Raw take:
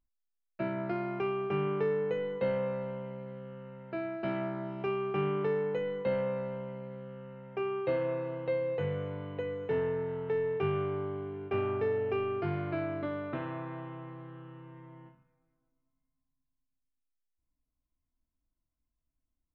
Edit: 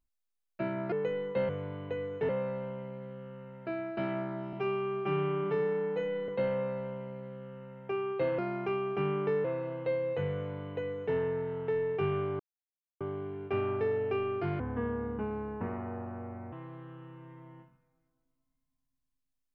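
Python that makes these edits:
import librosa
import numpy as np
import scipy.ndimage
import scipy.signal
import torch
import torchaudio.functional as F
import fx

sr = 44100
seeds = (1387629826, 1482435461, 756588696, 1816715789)

y = fx.edit(x, sr, fx.move(start_s=0.92, length_s=1.06, to_s=8.06),
    fx.stretch_span(start_s=4.79, length_s=1.17, factor=1.5),
    fx.duplicate(start_s=8.97, length_s=0.8, to_s=2.55),
    fx.insert_silence(at_s=11.01, length_s=0.61),
    fx.speed_span(start_s=12.6, length_s=1.39, speed=0.72), tone=tone)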